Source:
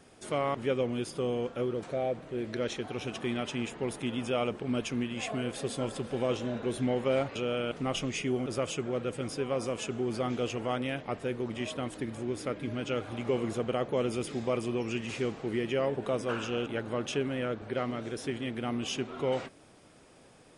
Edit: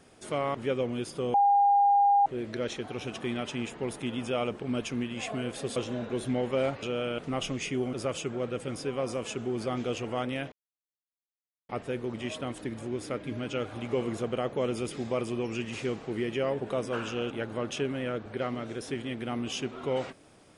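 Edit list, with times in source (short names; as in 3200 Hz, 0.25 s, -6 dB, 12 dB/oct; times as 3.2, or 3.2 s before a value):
1.34–2.26 bleep 807 Hz -18.5 dBFS
5.76–6.29 cut
11.05 insert silence 1.17 s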